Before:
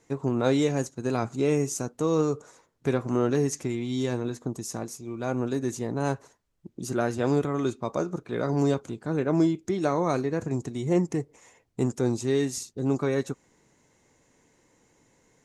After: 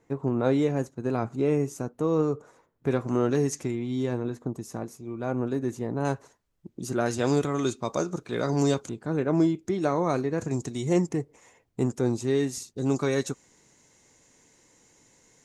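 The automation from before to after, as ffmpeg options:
-af "asetnsamples=n=441:p=0,asendcmd='2.91 equalizer g -1;3.71 equalizer g -10;6.05 equalizer g -1;7.06 equalizer g 8.5;8.89 equalizer g -2.5;10.38 equalizer g 6.5;11.09 equalizer g -2.5;12.76 equalizer g 8.5',equalizer=f=6.5k:t=o:w=2.3:g=-11.5"

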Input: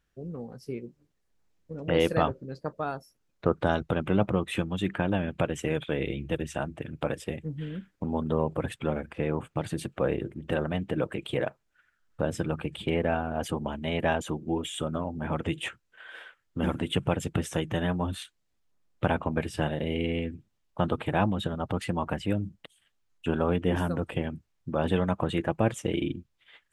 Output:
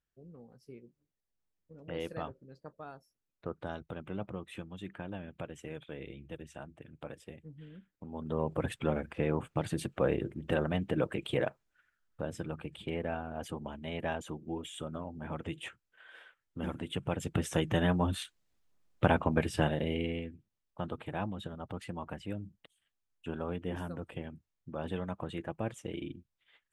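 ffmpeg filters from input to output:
-af "volume=7dB,afade=t=in:st=8.11:d=0.55:silence=0.237137,afade=t=out:st=11.39:d=0.82:silence=0.446684,afade=t=in:st=17.02:d=0.66:silence=0.354813,afade=t=out:st=19.59:d=0.74:silence=0.281838"

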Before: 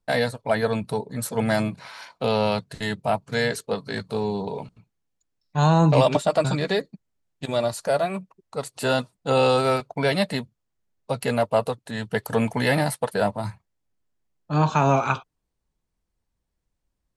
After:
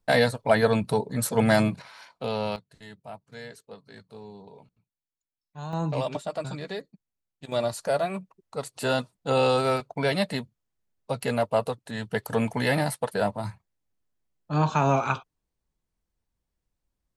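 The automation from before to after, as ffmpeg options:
-af "asetnsamples=n=441:p=0,asendcmd='1.82 volume volume -7dB;2.56 volume volume -18dB;5.73 volume volume -11dB;7.52 volume volume -3dB',volume=2dB"

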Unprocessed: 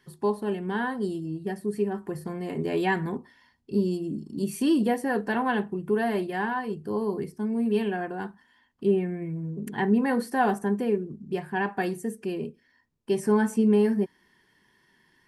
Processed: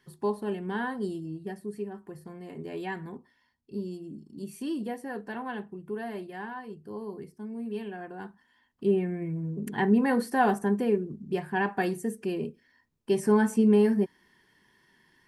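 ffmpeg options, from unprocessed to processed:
-af "volume=7dB,afade=t=out:st=1.08:d=0.85:silence=0.446684,afade=t=in:st=7.94:d=1.31:silence=0.316228"

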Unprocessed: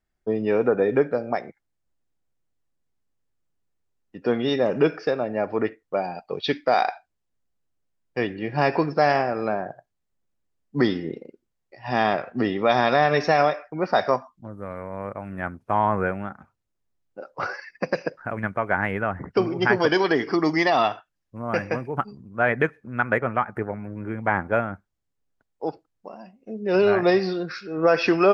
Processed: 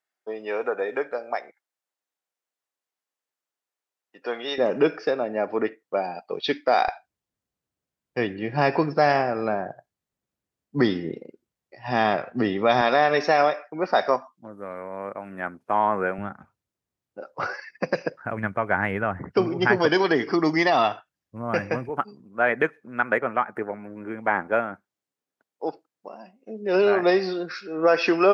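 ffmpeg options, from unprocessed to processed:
-af "asetnsamples=n=441:p=0,asendcmd='4.58 highpass f 220;6.88 highpass f 68;12.81 highpass f 240;16.18 highpass f 72;21.89 highpass f 250',highpass=630"

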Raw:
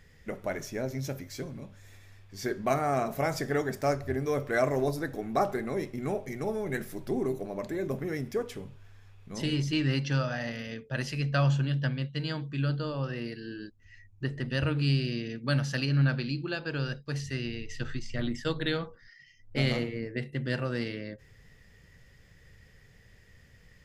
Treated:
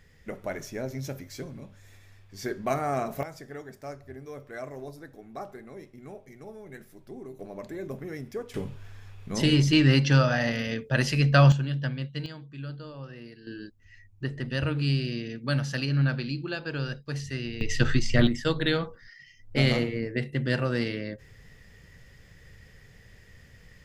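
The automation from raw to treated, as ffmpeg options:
-af "asetnsamples=n=441:p=0,asendcmd='3.23 volume volume -12dB;7.39 volume volume -4dB;8.54 volume volume 8dB;11.52 volume volume -0.5dB;12.26 volume volume -8.5dB;13.47 volume volume 0.5dB;17.61 volume volume 12dB;18.27 volume volume 4.5dB',volume=-0.5dB"

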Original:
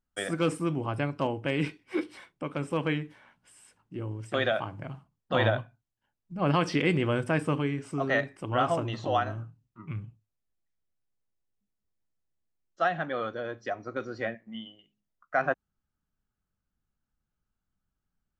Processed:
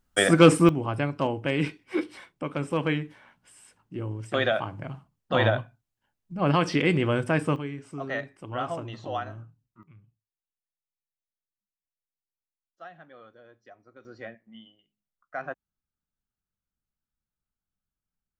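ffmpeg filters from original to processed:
-af "asetnsamples=n=441:p=0,asendcmd='0.69 volume volume 2.5dB;7.56 volume volume -5dB;9.83 volume volume -18dB;14.05 volume volume -8dB',volume=12dB"

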